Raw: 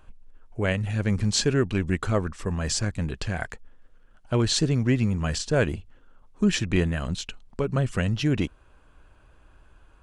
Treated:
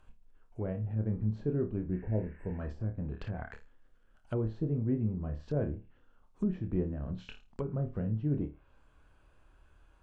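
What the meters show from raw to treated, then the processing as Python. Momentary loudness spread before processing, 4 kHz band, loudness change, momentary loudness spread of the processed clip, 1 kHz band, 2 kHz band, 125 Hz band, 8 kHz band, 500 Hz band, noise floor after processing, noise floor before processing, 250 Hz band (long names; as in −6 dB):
9 LU, below −25 dB, −9.5 dB, 9 LU, −15.0 dB, −21.5 dB, −7.5 dB, below −40 dB, −9.5 dB, −64 dBFS, −55 dBFS, −8.0 dB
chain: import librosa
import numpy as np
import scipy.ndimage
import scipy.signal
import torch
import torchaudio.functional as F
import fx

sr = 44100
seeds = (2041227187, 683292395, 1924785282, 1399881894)

y = fx.room_flutter(x, sr, wall_m=4.7, rt60_s=0.26)
y = fx.env_lowpass_down(y, sr, base_hz=580.0, full_db=-22.0)
y = fx.spec_repair(y, sr, seeds[0], start_s=1.98, length_s=0.59, low_hz=1000.0, high_hz=7500.0, source='before')
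y = y * 10.0 ** (-9.0 / 20.0)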